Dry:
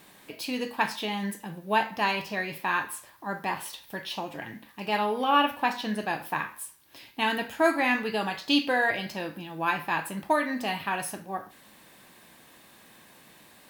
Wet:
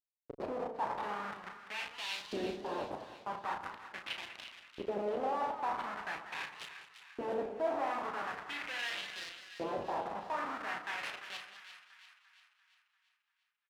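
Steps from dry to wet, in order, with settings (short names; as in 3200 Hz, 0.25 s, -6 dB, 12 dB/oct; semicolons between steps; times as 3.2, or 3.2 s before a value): Schmitt trigger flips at -30.5 dBFS; LFO band-pass saw up 0.43 Hz 330–4500 Hz; doubler 34 ms -7 dB; split-band echo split 1200 Hz, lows 85 ms, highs 0.344 s, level -10 dB; warbling echo 0.194 s, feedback 36%, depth 188 cents, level -12.5 dB; gain +1 dB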